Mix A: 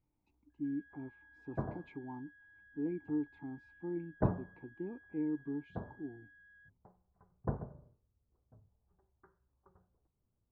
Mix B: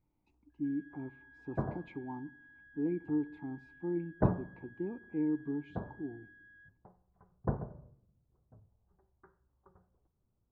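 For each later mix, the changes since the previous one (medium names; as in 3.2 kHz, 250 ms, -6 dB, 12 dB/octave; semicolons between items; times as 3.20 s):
reverb: on, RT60 0.95 s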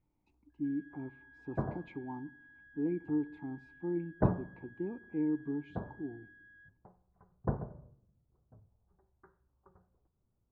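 no change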